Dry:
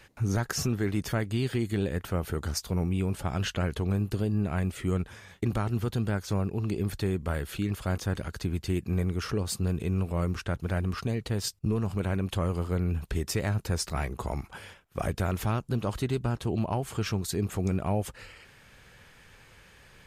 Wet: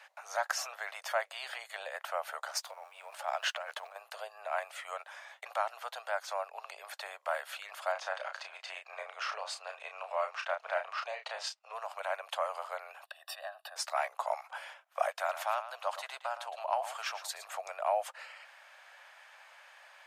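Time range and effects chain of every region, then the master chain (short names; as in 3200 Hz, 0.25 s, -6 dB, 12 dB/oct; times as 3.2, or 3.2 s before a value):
2.55–3.96 G.711 law mismatch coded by A + negative-ratio compressor -31 dBFS, ratio -0.5
7.92–11.74 LPF 5900 Hz + bell 2600 Hz +3 dB 0.29 oct + doubler 32 ms -6.5 dB
13.06–13.76 fixed phaser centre 1400 Hz, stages 8 + comb 1.1 ms, depth 83% + compressor 10:1, threshold -32 dBFS
15.1–17.47 bell 220 Hz -8.5 dB 2.1 oct + echo 0.113 s -12 dB
whole clip: steep high-pass 600 Hz 72 dB/oct; tilt -3 dB/oct; gain +3.5 dB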